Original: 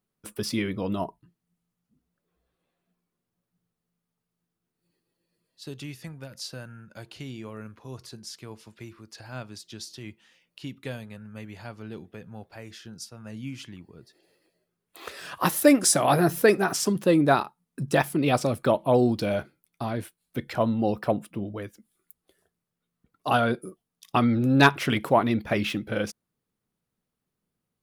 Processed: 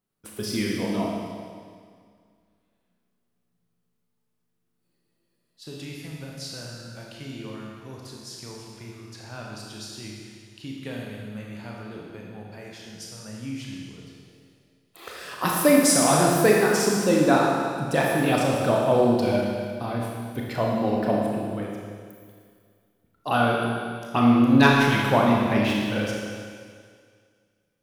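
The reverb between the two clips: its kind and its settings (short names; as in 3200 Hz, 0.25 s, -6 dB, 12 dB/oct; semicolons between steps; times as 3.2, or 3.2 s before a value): Schroeder reverb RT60 2 s, combs from 26 ms, DRR -2.5 dB; gain -2 dB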